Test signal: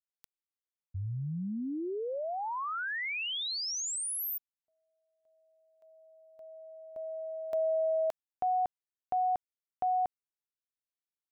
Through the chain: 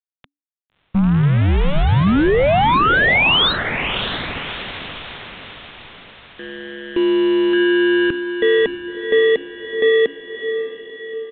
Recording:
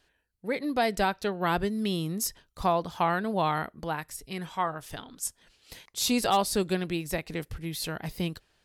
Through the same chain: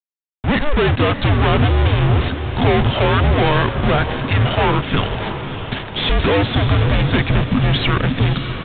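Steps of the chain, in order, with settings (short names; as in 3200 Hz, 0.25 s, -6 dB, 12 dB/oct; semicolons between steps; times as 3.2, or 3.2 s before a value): AGC gain up to 7 dB; in parallel at -11.5 dB: sample-and-hold 31×; on the sum: fuzz box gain 38 dB, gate -40 dBFS; frequency shift -290 Hz; on a send: diffused feedback echo 0.619 s, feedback 52%, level -9 dB; on the sum: downsampling 8000 Hz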